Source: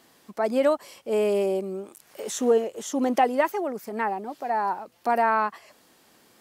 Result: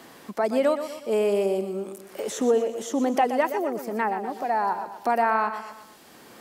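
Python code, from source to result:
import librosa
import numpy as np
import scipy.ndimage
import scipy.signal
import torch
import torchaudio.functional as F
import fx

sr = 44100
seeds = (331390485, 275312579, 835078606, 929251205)

y = fx.echo_feedback(x, sr, ms=121, feedback_pct=38, wet_db=-11)
y = fx.band_squash(y, sr, depth_pct=40)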